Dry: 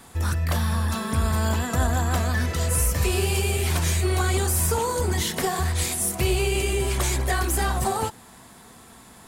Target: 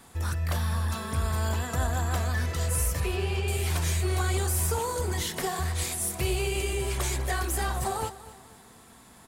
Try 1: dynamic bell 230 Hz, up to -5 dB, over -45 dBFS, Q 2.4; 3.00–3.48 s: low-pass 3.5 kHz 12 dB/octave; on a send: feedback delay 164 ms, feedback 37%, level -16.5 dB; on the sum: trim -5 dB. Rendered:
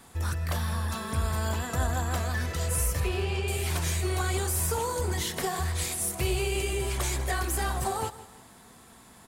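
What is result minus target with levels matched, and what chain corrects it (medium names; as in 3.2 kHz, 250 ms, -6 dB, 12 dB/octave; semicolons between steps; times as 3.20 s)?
echo 78 ms early
dynamic bell 230 Hz, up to -5 dB, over -45 dBFS, Q 2.4; 3.00–3.48 s: low-pass 3.5 kHz 12 dB/octave; on a send: feedback delay 242 ms, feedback 37%, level -16.5 dB; on the sum: trim -5 dB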